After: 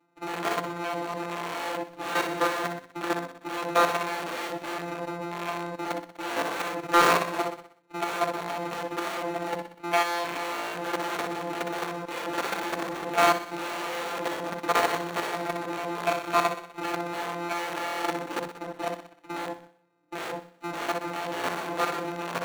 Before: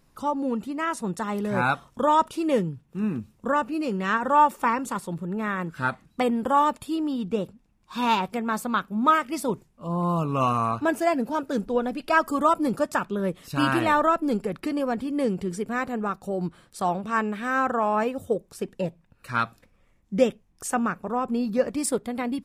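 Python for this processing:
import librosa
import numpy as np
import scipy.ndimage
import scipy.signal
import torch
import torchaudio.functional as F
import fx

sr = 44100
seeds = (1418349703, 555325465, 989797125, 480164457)

y = np.r_[np.sort(x[:len(x) // 256 * 256].reshape(-1, 256), axis=1).ravel(), x[len(x) // 256 * 256:]]
y = fx.rev_fdn(y, sr, rt60_s=0.3, lf_ratio=1.3, hf_ratio=0.45, size_ms=20.0, drr_db=-9.0)
y = (np.mod(10.0 ** (11.0 / 20.0) * y + 1.0, 2.0) - 1.0) / 10.0 ** (11.0 / 20.0)
y = fx.level_steps(y, sr, step_db=15)
y = fx.dynamic_eq(y, sr, hz=3000.0, q=4.1, threshold_db=-37.0, ratio=4.0, max_db=-3)
y = scipy.signal.sosfilt(scipy.signal.butter(2, 370.0, 'highpass', fs=sr, output='sos'), y)
y = fx.high_shelf(y, sr, hz=4300.0, db=-11.0)
y = fx.notch(y, sr, hz=5000.0, q=11.0)
y = fx.echo_feedback(y, sr, ms=62, feedback_pct=59, wet_db=-15.5)
y = fx.hpss(y, sr, part='percussive', gain_db=-16)
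y = fx.leveller(y, sr, passes=1)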